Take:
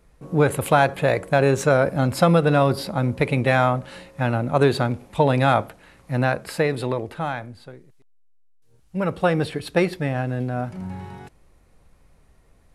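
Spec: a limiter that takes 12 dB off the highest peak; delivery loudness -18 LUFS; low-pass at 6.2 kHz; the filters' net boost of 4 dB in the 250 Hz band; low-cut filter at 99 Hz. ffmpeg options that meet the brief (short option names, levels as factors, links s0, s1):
-af "highpass=99,lowpass=6200,equalizer=f=250:t=o:g=5.5,volume=2.37,alimiter=limit=0.473:level=0:latency=1"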